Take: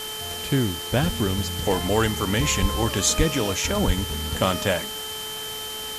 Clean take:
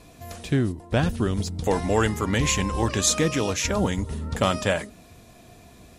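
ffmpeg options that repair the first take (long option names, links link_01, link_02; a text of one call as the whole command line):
ffmpeg -i in.wav -filter_complex "[0:a]bandreject=frequency=433.1:width_type=h:width=4,bandreject=frequency=866.2:width_type=h:width=4,bandreject=frequency=1299.3:width_type=h:width=4,bandreject=frequency=1732.4:width_type=h:width=4,bandreject=frequency=3100:width=30,asplit=3[link_01][link_02][link_03];[link_01]afade=type=out:start_time=2.61:duration=0.02[link_04];[link_02]highpass=frequency=140:width=0.5412,highpass=frequency=140:width=1.3066,afade=type=in:start_time=2.61:duration=0.02,afade=type=out:start_time=2.73:duration=0.02[link_05];[link_03]afade=type=in:start_time=2.73:duration=0.02[link_06];[link_04][link_05][link_06]amix=inputs=3:normalize=0,asplit=3[link_07][link_08][link_09];[link_07]afade=type=out:start_time=3.17:duration=0.02[link_10];[link_08]highpass=frequency=140:width=0.5412,highpass=frequency=140:width=1.3066,afade=type=in:start_time=3.17:duration=0.02,afade=type=out:start_time=3.29:duration=0.02[link_11];[link_09]afade=type=in:start_time=3.29:duration=0.02[link_12];[link_10][link_11][link_12]amix=inputs=3:normalize=0,asplit=3[link_13][link_14][link_15];[link_13]afade=type=out:start_time=3.86:duration=0.02[link_16];[link_14]highpass=frequency=140:width=0.5412,highpass=frequency=140:width=1.3066,afade=type=in:start_time=3.86:duration=0.02,afade=type=out:start_time=3.98:duration=0.02[link_17];[link_15]afade=type=in:start_time=3.98:duration=0.02[link_18];[link_16][link_17][link_18]amix=inputs=3:normalize=0,afftdn=noise_reduction=17:noise_floor=-33" out.wav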